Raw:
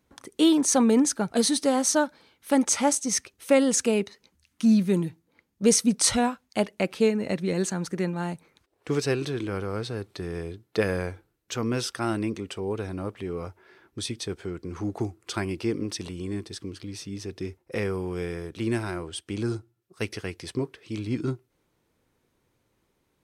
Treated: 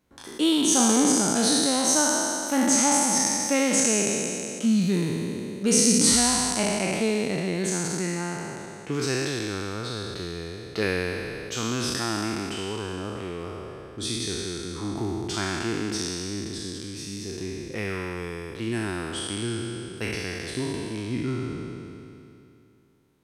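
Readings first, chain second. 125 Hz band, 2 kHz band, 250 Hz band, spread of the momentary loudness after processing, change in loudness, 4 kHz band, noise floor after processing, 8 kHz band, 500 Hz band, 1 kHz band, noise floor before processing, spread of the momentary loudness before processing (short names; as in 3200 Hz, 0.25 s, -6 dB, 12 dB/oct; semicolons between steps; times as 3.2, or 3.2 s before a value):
+0.5 dB, +4.5 dB, 0.0 dB, 15 LU, +2.0 dB, +5.5 dB, -48 dBFS, +6.0 dB, -1.5 dB, +2.5 dB, -73 dBFS, 15 LU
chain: spectral trails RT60 2.70 s; dynamic EQ 520 Hz, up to -7 dB, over -36 dBFS, Q 2.3; gain -2.5 dB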